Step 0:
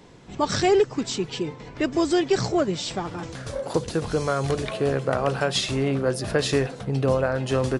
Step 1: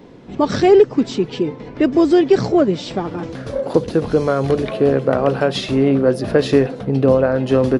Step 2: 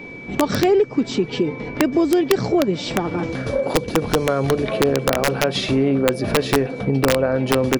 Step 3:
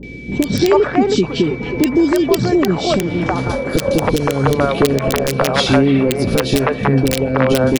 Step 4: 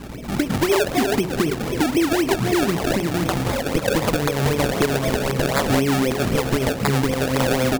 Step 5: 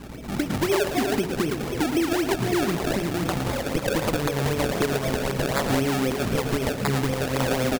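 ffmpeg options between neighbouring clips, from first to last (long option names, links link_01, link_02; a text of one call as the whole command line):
ffmpeg -i in.wav -af "equalizer=frequency=250:width_type=o:width=1:gain=8,equalizer=frequency=500:width_type=o:width=1:gain=5,equalizer=frequency=8000:width_type=o:width=1:gain=-11,volume=2.5dB" out.wav
ffmpeg -i in.wav -af "aeval=exprs='val(0)+0.0112*sin(2*PI*2300*n/s)':channel_layout=same,acompressor=threshold=-21dB:ratio=2.5,aeval=exprs='(mod(3.76*val(0)+1,2)-1)/3.76':channel_layout=same,volume=3.5dB" out.wav
ffmpeg -i in.wav -filter_complex "[0:a]acrossover=split=470|2200[link_01][link_02][link_03];[link_03]adelay=30[link_04];[link_02]adelay=320[link_05];[link_01][link_05][link_04]amix=inputs=3:normalize=0,aeval=exprs='val(0)+0.00631*(sin(2*PI*60*n/s)+sin(2*PI*2*60*n/s)/2+sin(2*PI*3*60*n/s)/3+sin(2*PI*4*60*n/s)/4+sin(2*PI*5*60*n/s)/5)':channel_layout=same,alimiter=level_in=7.5dB:limit=-1dB:release=50:level=0:latency=1,volume=-1dB" out.wav
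ffmpeg -i in.wav -af "acrusher=samples=30:mix=1:aa=0.000001:lfo=1:lforange=30:lforate=3.9,bandreject=frequency=91.65:width_type=h:width=4,bandreject=frequency=183.3:width_type=h:width=4,bandreject=frequency=274.95:width_type=h:width=4,bandreject=frequency=366.6:width_type=h:width=4,bandreject=frequency=458.25:width_type=h:width=4,bandreject=frequency=549.9:width_type=h:width=4,bandreject=frequency=641.55:width_type=h:width=4,bandreject=frequency=733.2:width_type=h:width=4,bandreject=frequency=824.85:width_type=h:width=4,bandreject=frequency=916.5:width_type=h:width=4,bandreject=frequency=1008.15:width_type=h:width=4,bandreject=frequency=1099.8:width_type=h:width=4,acompressor=threshold=-16dB:ratio=2,volume=-2dB" out.wav
ffmpeg -i in.wav -af "aecho=1:1:113:0.335,volume=-4.5dB" out.wav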